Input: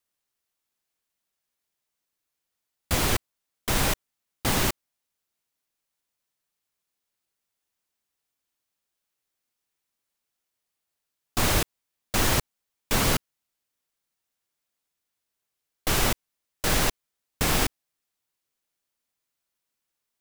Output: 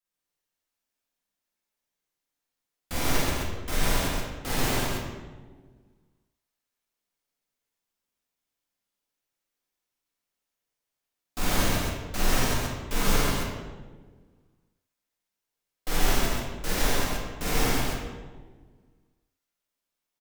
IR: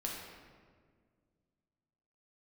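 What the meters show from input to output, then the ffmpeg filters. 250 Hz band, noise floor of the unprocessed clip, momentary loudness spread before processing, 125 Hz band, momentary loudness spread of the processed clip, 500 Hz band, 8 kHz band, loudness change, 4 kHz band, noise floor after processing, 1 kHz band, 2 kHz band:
+0.5 dB, -84 dBFS, 10 LU, -0.5 dB, 14 LU, 0.0 dB, -3.0 dB, -2.5 dB, -2.0 dB, under -85 dBFS, -0.5 dB, -1.0 dB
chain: -filter_complex "[0:a]aecho=1:1:46.65|137|265.3:0.891|1|0.708[a];[1:a]atrim=start_sample=2205,asetrate=61740,aresample=44100[b];[a][b]afir=irnorm=-1:irlink=0,volume=-5dB"

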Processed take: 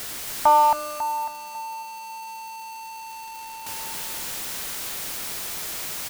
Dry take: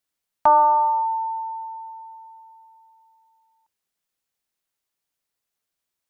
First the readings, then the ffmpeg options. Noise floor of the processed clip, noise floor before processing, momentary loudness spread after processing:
-38 dBFS, -83 dBFS, 18 LU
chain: -af "aeval=exprs='val(0)+0.5*0.0562*sgn(val(0))':c=same,aecho=1:1:274|548|822|1096|1370|1644:0.668|0.307|0.141|0.0651|0.0299|0.0138,volume=-2dB"

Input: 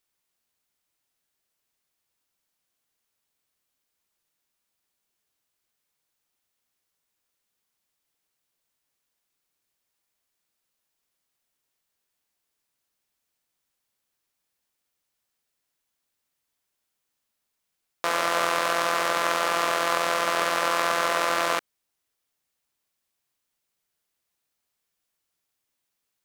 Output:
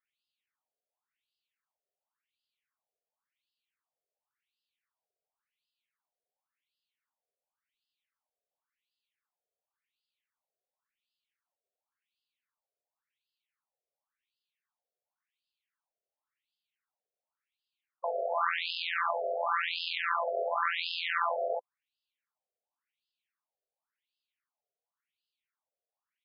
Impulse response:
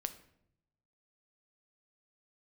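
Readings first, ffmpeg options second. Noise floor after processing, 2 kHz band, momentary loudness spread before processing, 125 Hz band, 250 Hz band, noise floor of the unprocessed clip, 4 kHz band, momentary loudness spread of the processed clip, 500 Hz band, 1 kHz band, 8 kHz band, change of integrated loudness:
under -85 dBFS, -7.5 dB, 3 LU, under -40 dB, under -25 dB, -81 dBFS, -6.5 dB, 5 LU, -6.0 dB, -7.5 dB, under -40 dB, -7.5 dB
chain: -af "aeval=exprs='if(lt(val(0),0),0.708*val(0),val(0))':c=same,afftfilt=real='re*between(b*sr/1024,520*pow(3700/520,0.5+0.5*sin(2*PI*0.92*pts/sr))/1.41,520*pow(3700/520,0.5+0.5*sin(2*PI*0.92*pts/sr))*1.41)':imag='im*between(b*sr/1024,520*pow(3700/520,0.5+0.5*sin(2*PI*0.92*pts/sr))/1.41,520*pow(3700/520,0.5+0.5*sin(2*PI*0.92*pts/sr))*1.41)':win_size=1024:overlap=0.75"

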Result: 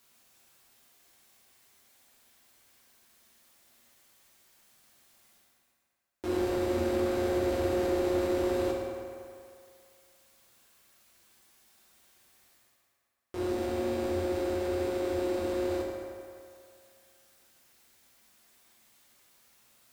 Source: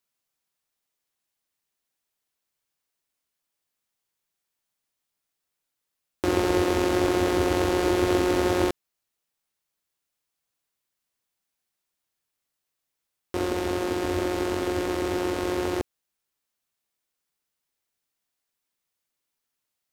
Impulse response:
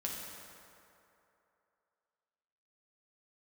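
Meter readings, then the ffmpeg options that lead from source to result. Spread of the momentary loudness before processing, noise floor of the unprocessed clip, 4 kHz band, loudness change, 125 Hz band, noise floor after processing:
7 LU, -83 dBFS, -10.0 dB, -6.0 dB, -6.5 dB, -73 dBFS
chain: -filter_complex "[0:a]areverse,acompressor=mode=upward:threshold=-39dB:ratio=2.5,areverse,asoftclip=type=tanh:threshold=-21.5dB[a];[1:a]atrim=start_sample=2205,asetrate=52920,aresample=44100[b];[a][b]afir=irnorm=-1:irlink=0,volume=-3.5dB"

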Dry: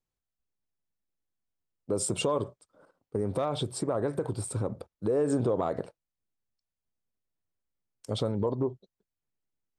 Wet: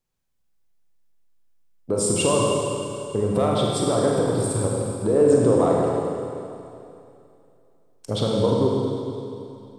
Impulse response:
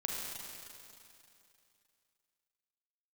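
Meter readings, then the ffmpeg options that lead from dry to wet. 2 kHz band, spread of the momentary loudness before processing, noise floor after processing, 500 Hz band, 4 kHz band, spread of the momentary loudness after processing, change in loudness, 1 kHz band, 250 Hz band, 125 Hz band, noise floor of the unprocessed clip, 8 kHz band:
+9.5 dB, 10 LU, -64 dBFS, +10.5 dB, +9.5 dB, 15 LU, +9.0 dB, +10.0 dB, +10.0 dB, +9.0 dB, under -85 dBFS, +10.0 dB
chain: -filter_complex "[1:a]atrim=start_sample=2205[a];[0:a][a]afir=irnorm=-1:irlink=0,volume=6.5dB"

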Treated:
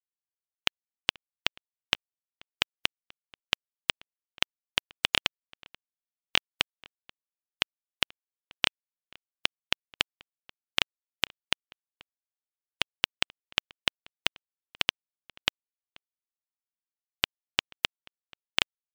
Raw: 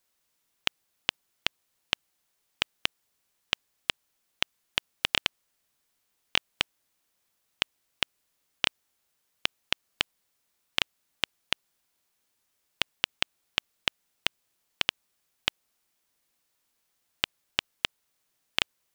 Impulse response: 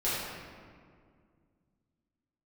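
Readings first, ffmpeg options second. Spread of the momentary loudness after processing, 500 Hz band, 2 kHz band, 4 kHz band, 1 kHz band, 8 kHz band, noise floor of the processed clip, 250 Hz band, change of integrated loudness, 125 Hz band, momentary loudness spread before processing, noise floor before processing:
3 LU, +1.0 dB, +1.0 dB, +1.0 dB, +1.0 dB, +1.0 dB, under -85 dBFS, +1.0 dB, +1.0 dB, +1.0 dB, 3 LU, -76 dBFS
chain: -filter_complex "[0:a]afftfilt=real='re*gte(hypot(re,im),0.00112)':imag='im*gte(hypot(re,im),0.00112)':win_size=1024:overlap=0.75,asplit=2[a][b];[b]adelay=484,volume=-24dB,highshelf=f=4k:g=-10.9[c];[a][c]amix=inputs=2:normalize=0,volume=1dB"

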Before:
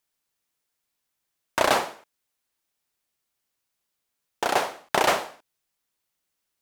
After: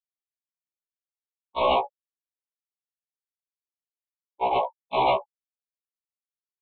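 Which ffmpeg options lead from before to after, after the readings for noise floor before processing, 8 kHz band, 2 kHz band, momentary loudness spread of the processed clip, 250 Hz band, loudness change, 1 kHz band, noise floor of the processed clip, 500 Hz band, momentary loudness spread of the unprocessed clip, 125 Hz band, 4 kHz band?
-81 dBFS, under -40 dB, -9.0 dB, 9 LU, -3.5 dB, -0.5 dB, +1.5 dB, under -85 dBFS, +0.5 dB, 11 LU, 0.0 dB, -4.5 dB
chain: -af "afftfilt=real='re*gte(hypot(re,im),0.141)':imag='im*gte(hypot(re,im),0.141)':win_size=1024:overlap=0.75,lowshelf=f=310:g=-7,aecho=1:1:7.4:0.91,aresample=8000,asoftclip=type=hard:threshold=-21.5dB,aresample=44100,asuperstop=centerf=1600:order=20:qfactor=1.6,afftfilt=real='re*1.73*eq(mod(b,3),0)':imag='im*1.73*eq(mod(b,3),0)':win_size=2048:overlap=0.75,volume=6.5dB"

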